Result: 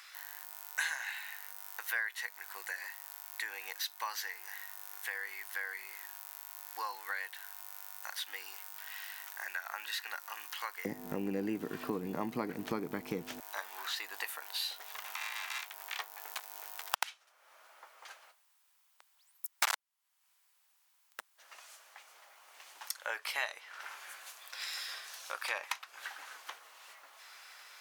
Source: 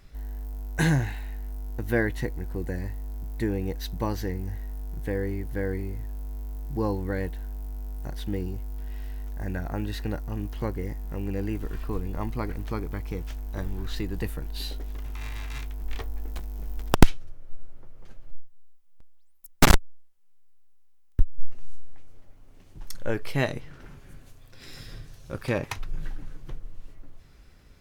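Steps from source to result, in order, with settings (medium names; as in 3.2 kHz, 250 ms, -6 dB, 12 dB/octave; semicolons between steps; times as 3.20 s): high-pass 1.1 kHz 24 dB/octave, from 10.85 s 180 Hz, from 13.40 s 840 Hz; compression 2.5:1, threshold -51 dBFS, peak gain reduction 22.5 dB; trim +11.5 dB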